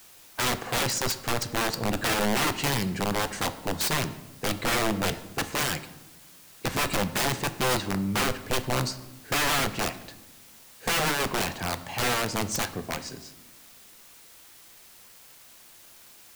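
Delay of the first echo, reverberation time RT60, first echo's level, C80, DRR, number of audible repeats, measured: none, 1.0 s, none, 16.0 dB, 10.5 dB, none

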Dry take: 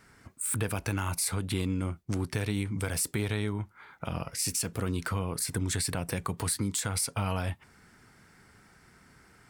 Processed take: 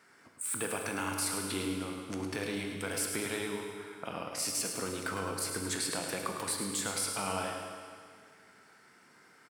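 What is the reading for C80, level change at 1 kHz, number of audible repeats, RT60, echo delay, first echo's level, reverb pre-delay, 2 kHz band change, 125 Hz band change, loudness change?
3.0 dB, +0.5 dB, 2, 2.0 s, 0.106 s, -8.0 dB, 20 ms, 0.0 dB, -14.0 dB, -3.0 dB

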